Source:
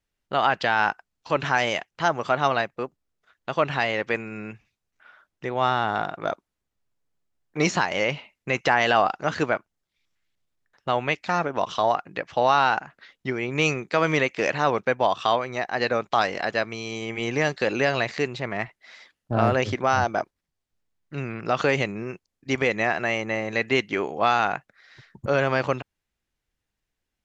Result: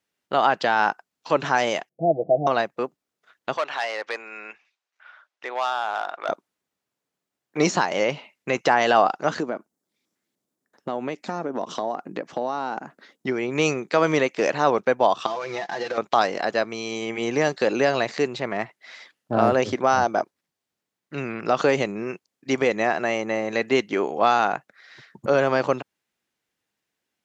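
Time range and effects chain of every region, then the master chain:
1.89–2.47 Chebyshev low-pass 750 Hz, order 8 + comb 6.1 ms, depth 71%
3.57–6.29 hard clip -18 dBFS + BPF 720–5800 Hz
9.4–13.27 EQ curve 120 Hz 0 dB, 240 Hz +9 dB, 2700 Hz -9 dB, 8200 Hz +2 dB + compressor 3:1, threshold -29 dBFS
15.26–15.98 CVSD 32 kbps + comb 5.9 ms, depth 71% + compressor, threshold -28 dBFS
whole clip: HPF 200 Hz 12 dB/oct; dynamic EQ 2300 Hz, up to -7 dB, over -37 dBFS, Q 0.86; gain +4 dB

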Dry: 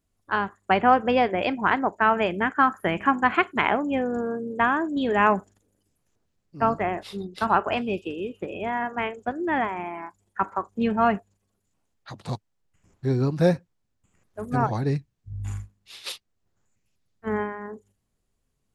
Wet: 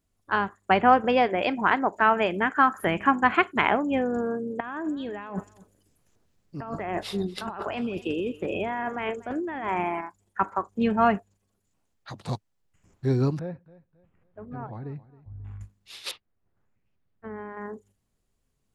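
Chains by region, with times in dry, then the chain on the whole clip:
1.04–2.87 bell 64 Hz -6.5 dB 2.7 oct + upward compressor, threshold -24 dBFS
4.6–10.01 negative-ratio compressor -31 dBFS + echo 0.238 s -21 dB
13.39–15.61 air absorption 480 m + compressor 2:1, threshold -43 dBFS + feedback echo 0.269 s, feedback 33%, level -19 dB
16.11–17.57 LPF 2200 Hz + compressor 5:1, threshold -35 dBFS
whole clip: dry

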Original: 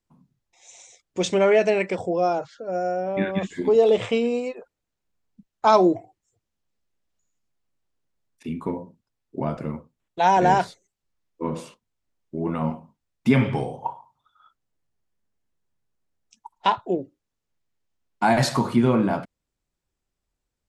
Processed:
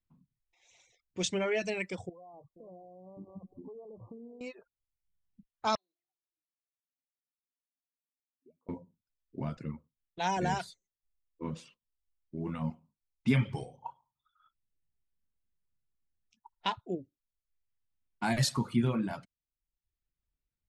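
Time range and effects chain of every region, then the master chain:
2.09–4.41 echo 0.471 s -21.5 dB + compressor 4:1, threshold -35 dBFS + brick-wall FIR band-stop 1200–9600 Hz
5.75–8.69 notches 50/100/150/200/250/300/350/400 Hz + auto-wah 260–4200 Hz, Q 21, up, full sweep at -16.5 dBFS + air absorption 390 m
whole clip: low-pass opened by the level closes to 2600 Hz, open at -18.5 dBFS; reverb removal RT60 0.72 s; bell 660 Hz -12 dB 2.9 oct; gain -2.5 dB

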